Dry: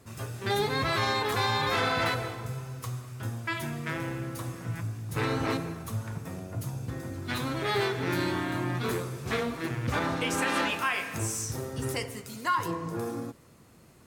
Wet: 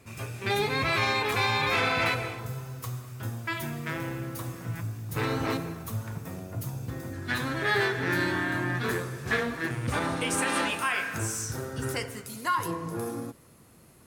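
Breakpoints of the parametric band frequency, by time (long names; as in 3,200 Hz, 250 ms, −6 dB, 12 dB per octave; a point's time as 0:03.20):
parametric band +12 dB 0.26 octaves
2,400 Hz
from 0:02.39 15,000 Hz
from 0:07.13 1,700 Hz
from 0:09.71 9,100 Hz
from 0:10.92 1,500 Hz
from 0:12.26 11,000 Hz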